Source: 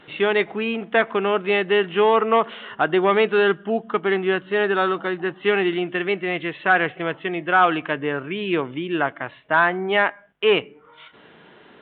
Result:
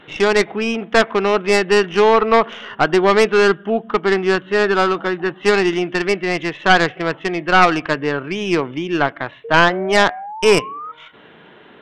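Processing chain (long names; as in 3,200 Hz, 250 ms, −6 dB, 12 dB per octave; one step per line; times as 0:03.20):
stylus tracing distortion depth 0.14 ms
sound drawn into the spectrogram rise, 0:09.44–0:10.92, 450–1,300 Hz −34 dBFS
level +4 dB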